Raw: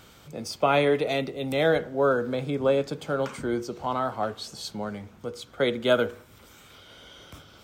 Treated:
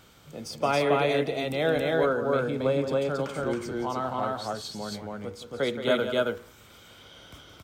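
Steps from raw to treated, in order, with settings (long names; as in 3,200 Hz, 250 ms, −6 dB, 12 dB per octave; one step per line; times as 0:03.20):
loudspeakers that aren't time-aligned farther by 59 metres −10 dB, 94 metres −1 dB
level −3.5 dB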